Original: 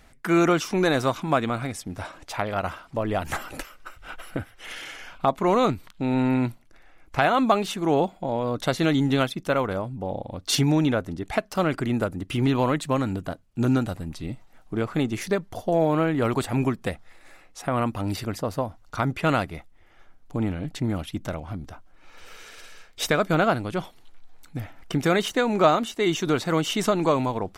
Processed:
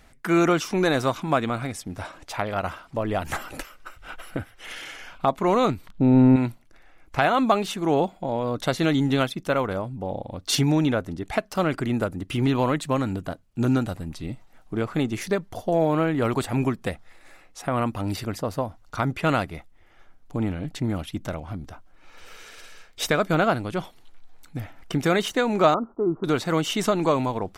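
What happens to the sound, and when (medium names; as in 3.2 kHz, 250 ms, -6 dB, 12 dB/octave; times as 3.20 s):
5.89–6.36 s: tilt shelf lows +9 dB, about 840 Hz
25.74–26.24 s: rippled Chebyshev low-pass 1.4 kHz, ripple 3 dB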